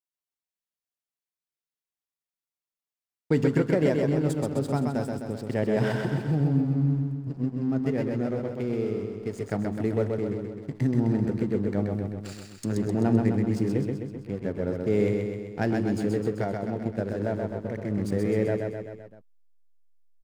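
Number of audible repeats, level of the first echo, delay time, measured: 5, -4.0 dB, 129 ms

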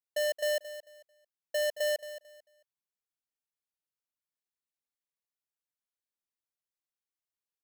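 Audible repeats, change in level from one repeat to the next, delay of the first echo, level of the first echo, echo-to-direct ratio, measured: 2, -12.5 dB, 222 ms, -13.5 dB, -13.5 dB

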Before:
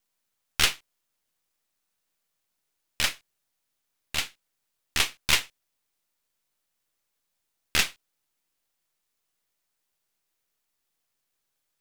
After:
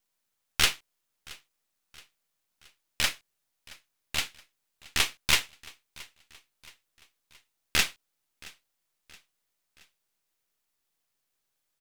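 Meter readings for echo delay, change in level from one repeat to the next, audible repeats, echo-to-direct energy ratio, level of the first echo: 673 ms, -6.0 dB, 3, -21.5 dB, -22.5 dB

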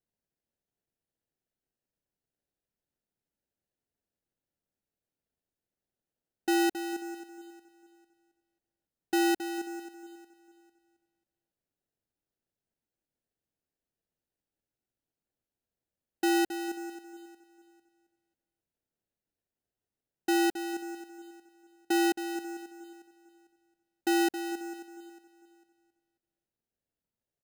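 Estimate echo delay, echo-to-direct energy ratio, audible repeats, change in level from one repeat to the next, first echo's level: 450 ms, -17.5 dB, 2, -11.0 dB, -18.0 dB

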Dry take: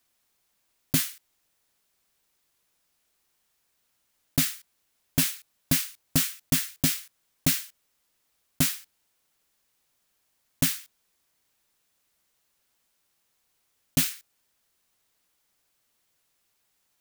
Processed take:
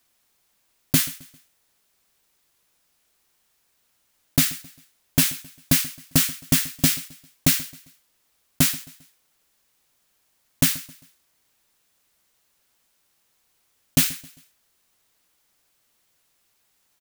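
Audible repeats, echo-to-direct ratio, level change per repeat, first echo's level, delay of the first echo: 2, -19.5 dB, -7.5 dB, -20.5 dB, 133 ms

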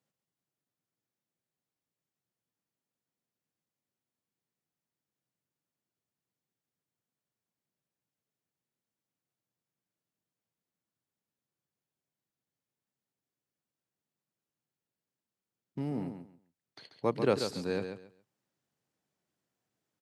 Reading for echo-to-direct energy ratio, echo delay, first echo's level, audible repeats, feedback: -8.0 dB, 137 ms, -8.0 dB, 2, 21%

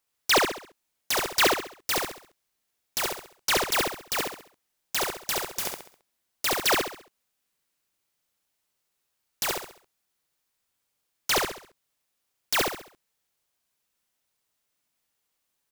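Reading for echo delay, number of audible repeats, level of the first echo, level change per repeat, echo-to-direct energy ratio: 67 ms, 4, -3.5 dB, -8.0 dB, -3.0 dB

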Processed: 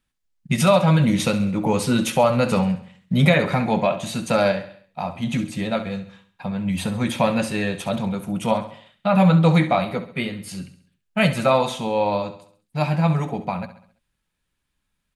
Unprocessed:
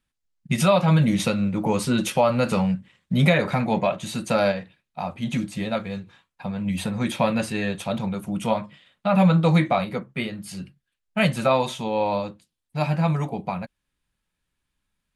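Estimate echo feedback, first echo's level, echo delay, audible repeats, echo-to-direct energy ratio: 48%, -13.0 dB, 67 ms, 4, -12.0 dB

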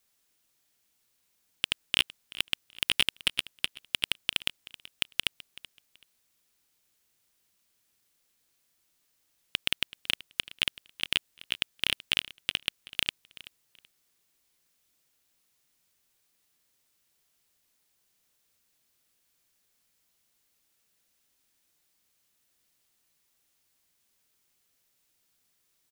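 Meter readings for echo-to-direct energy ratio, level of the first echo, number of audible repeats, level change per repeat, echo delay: -18.5 dB, -18.5 dB, 2, -13.0 dB, 380 ms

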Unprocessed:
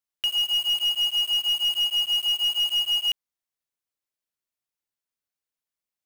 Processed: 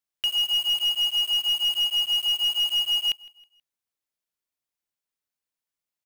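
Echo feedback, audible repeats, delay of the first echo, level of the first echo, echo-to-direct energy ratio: 39%, 2, 160 ms, -23.0 dB, -22.5 dB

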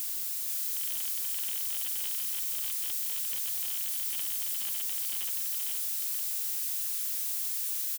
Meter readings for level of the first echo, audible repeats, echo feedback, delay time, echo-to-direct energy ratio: -4.0 dB, 1, no regular repeats, 478 ms, -4.0 dB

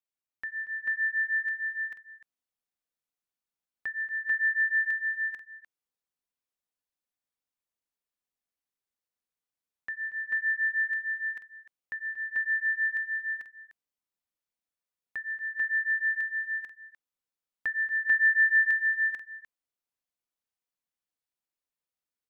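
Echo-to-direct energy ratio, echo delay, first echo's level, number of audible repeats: 0.0 dB, 234 ms, -18.5 dB, 4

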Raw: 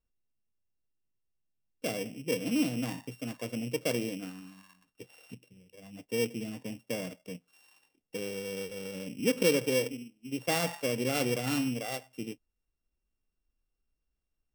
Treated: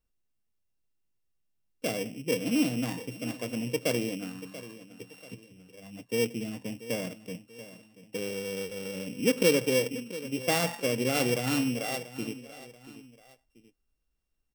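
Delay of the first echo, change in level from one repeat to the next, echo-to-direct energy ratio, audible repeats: 685 ms, -8.0 dB, -15.0 dB, 2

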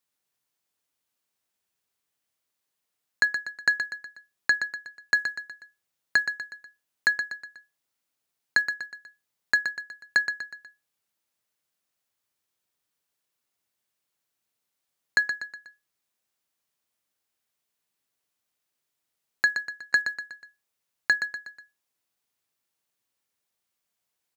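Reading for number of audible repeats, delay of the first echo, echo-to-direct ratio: 4, 122 ms, -7.5 dB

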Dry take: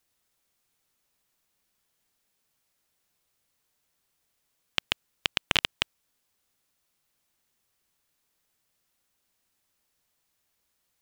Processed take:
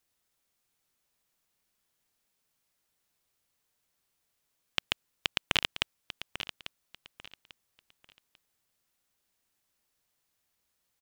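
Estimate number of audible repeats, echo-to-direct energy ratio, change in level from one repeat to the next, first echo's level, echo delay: 3, -11.0 dB, -11.5 dB, -11.5 dB, 844 ms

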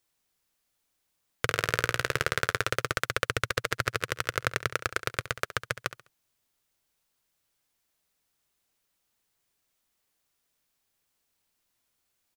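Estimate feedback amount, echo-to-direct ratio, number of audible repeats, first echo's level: 32%, -13.5 dB, 3, -14.0 dB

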